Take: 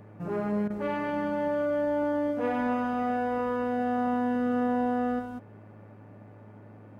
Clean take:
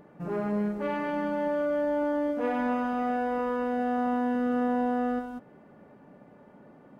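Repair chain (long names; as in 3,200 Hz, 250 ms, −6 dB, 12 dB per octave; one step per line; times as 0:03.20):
hum removal 106.1 Hz, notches 25
repair the gap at 0:00.68, 21 ms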